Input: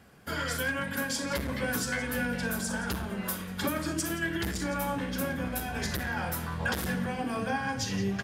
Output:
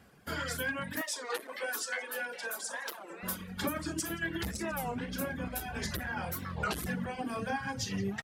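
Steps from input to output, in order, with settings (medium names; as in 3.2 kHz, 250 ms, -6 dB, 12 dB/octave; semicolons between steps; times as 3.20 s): 1.02–3.23 s: high-pass 410 Hz 24 dB/octave; reverb removal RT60 0.78 s; warped record 33 1/3 rpm, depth 250 cents; trim -2.5 dB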